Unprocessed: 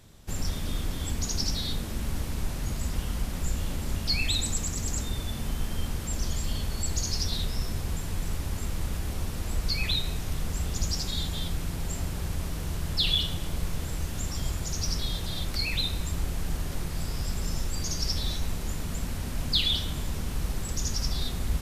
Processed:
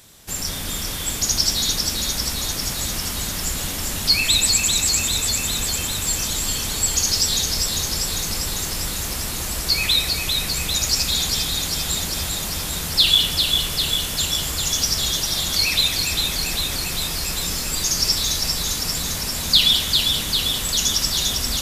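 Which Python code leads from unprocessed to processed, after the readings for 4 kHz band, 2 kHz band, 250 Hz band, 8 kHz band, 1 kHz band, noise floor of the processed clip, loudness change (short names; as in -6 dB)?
+13.5 dB, +11.5 dB, +3.5 dB, +15.5 dB, +9.0 dB, -27 dBFS, +11.5 dB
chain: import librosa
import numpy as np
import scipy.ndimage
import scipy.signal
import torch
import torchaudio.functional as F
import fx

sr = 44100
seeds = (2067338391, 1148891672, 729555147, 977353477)

p1 = fx.tilt_eq(x, sr, slope=2.5)
p2 = p1 + fx.echo_alternate(p1, sr, ms=199, hz=2200.0, feedback_pct=86, wet_db=-3, dry=0)
y = p2 * librosa.db_to_amplitude(6.0)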